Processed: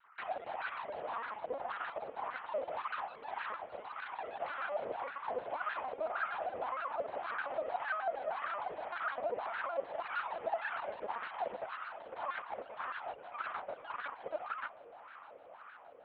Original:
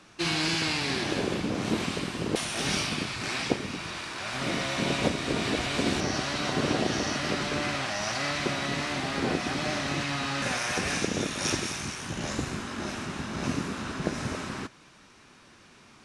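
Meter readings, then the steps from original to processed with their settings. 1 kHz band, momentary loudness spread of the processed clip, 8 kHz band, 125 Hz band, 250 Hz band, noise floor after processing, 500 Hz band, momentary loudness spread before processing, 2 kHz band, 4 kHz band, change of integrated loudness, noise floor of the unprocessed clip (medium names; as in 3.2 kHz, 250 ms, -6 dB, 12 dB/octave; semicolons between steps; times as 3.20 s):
-3.0 dB, 7 LU, under -40 dB, under -30 dB, -29.0 dB, -55 dBFS, -6.5 dB, 7 LU, -10.0 dB, -24.5 dB, -10.5 dB, -55 dBFS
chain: formants replaced by sine waves; resonant low shelf 440 Hz -10.5 dB, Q 3; compression 6:1, threshold -28 dBFS, peak gain reduction 12.5 dB; Chebyshev shaper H 2 -33 dB, 7 -39 dB, 8 -9 dB, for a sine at -18 dBFS; LPC vocoder at 8 kHz pitch kept; echo that smears into a reverb 920 ms, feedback 74%, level -15 dB; wah-wah 1.8 Hz 510–1400 Hz, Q 4.6; vibrato with a chosen wave square 6.5 Hz, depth 160 cents; trim -1.5 dB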